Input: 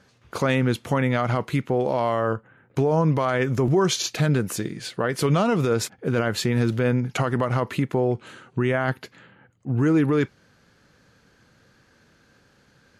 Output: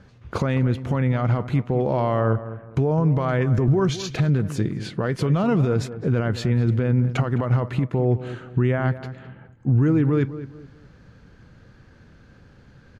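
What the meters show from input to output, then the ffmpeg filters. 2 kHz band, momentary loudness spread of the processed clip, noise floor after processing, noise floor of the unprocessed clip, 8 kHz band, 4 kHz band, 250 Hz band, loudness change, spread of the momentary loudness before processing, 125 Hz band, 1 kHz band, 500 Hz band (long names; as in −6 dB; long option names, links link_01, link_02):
−4.0 dB, 8 LU, −51 dBFS, −60 dBFS, −9.5 dB, −6.0 dB, +1.0 dB, +1.0 dB, 9 LU, +4.5 dB, −2.5 dB, −1.5 dB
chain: -filter_complex "[0:a]aemphasis=mode=reproduction:type=bsi,alimiter=limit=-15dB:level=0:latency=1:release=418,asplit=2[link_01][link_02];[link_02]adelay=210,lowpass=frequency=1600:poles=1,volume=-13dB,asplit=2[link_03][link_04];[link_04]adelay=210,lowpass=frequency=1600:poles=1,volume=0.34,asplit=2[link_05][link_06];[link_06]adelay=210,lowpass=frequency=1600:poles=1,volume=0.34[link_07];[link_03][link_05][link_07]amix=inputs=3:normalize=0[link_08];[link_01][link_08]amix=inputs=2:normalize=0,volume=3dB"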